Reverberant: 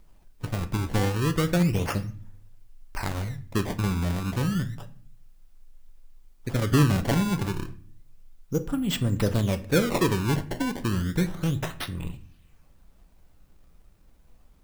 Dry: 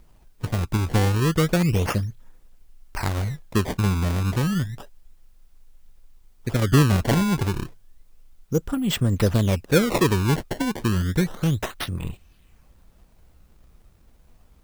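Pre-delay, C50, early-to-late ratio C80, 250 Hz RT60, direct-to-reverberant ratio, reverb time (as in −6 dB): 3 ms, 16.0 dB, 19.5 dB, 0.80 s, 9.0 dB, 0.50 s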